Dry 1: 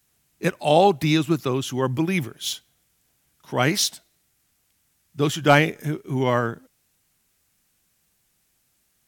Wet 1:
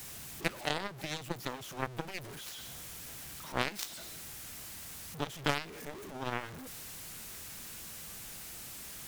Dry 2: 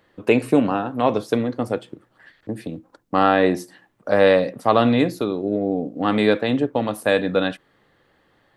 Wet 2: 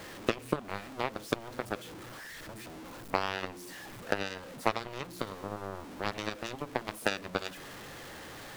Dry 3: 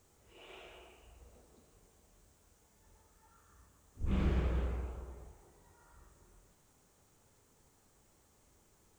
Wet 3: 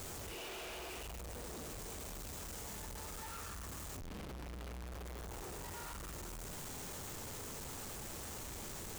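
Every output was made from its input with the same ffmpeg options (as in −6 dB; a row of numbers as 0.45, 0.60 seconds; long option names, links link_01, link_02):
-af "aeval=exprs='val(0)+0.5*0.0944*sgn(val(0))':channel_layout=same,acompressor=threshold=-18dB:ratio=12,aeval=exprs='0.316*(cos(1*acos(clip(val(0)/0.316,-1,1)))-cos(1*PI/2))+0.126*(cos(3*acos(clip(val(0)/0.316,-1,1)))-cos(3*PI/2))':channel_layout=same,volume=-3.5dB"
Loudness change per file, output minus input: −17.5, −17.0, −7.0 LU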